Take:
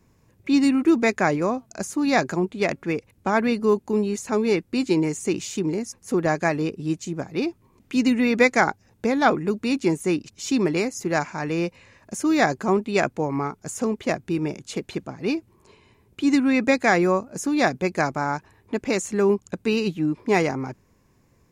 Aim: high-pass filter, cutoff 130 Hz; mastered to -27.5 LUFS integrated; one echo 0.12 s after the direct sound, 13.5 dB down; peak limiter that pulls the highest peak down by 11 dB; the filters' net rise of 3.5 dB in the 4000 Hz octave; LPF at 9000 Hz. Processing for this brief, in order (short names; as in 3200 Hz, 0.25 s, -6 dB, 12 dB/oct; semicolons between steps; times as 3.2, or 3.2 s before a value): HPF 130 Hz; LPF 9000 Hz; bell 4000 Hz +4.5 dB; limiter -14 dBFS; echo 0.12 s -13.5 dB; gain -2 dB